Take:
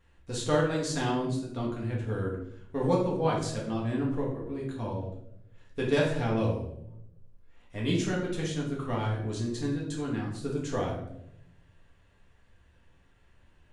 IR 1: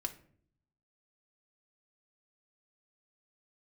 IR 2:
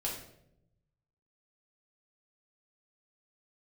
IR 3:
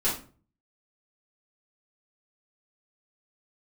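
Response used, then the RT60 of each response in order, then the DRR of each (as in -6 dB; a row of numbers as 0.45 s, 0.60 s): 2; 0.55 s, 0.80 s, 0.40 s; 4.0 dB, -4.0 dB, -10.5 dB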